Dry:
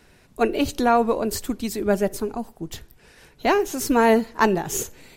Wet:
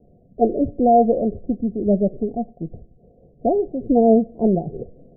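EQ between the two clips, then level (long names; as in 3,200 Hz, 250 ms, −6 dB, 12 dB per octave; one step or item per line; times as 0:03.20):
Chebyshev low-pass with heavy ripple 730 Hz, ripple 6 dB
+6.5 dB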